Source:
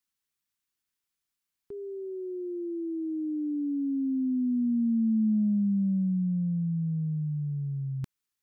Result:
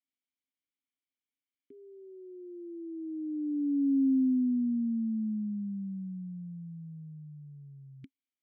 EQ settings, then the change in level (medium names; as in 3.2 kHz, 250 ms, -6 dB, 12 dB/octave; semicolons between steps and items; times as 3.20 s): vowel filter i; +3.5 dB